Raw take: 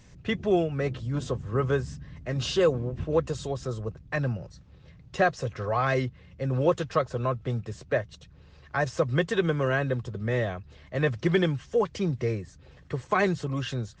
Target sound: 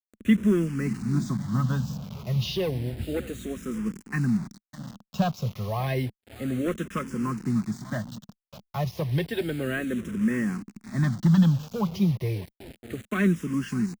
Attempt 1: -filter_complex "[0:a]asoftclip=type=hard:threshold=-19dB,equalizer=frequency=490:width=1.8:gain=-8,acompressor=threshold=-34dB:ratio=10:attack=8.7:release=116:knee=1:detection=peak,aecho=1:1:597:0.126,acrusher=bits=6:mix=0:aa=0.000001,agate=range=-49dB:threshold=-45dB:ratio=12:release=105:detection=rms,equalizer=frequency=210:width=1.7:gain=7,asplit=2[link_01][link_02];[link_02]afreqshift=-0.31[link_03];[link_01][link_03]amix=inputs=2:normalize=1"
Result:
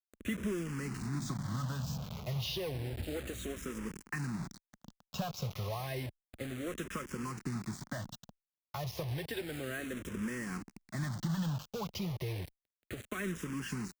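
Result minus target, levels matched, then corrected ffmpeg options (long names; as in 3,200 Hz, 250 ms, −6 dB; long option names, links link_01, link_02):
downward compressor: peak gain reduction +11.5 dB; 250 Hz band −2.5 dB
-filter_complex "[0:a]asoftclip=type=hard:threshold=-19dB,equalizer=frequency=490:width=1.8:gain=-8,aecho=1:1:597:0.126,acrusher=bits=6:mix=0:aa=0.000001,agate=range=-49dB:threshold=-45dB:ratio=12:release=105:detection=rms,equalizer=frequency=210:width=1.7:gain=16.5,asplit=2[link_01][link_02];[link_02]afreqshift=-0.31[link_03];[link_01][link_03]amix=inputs=2:normalize=1"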